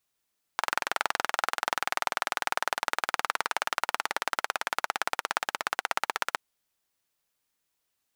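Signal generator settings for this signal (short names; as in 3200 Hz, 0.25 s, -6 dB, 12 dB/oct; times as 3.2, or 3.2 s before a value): single-cylinder engine model, changing speed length 5.77 s, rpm 2600, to 1900, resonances 890/1300 Hz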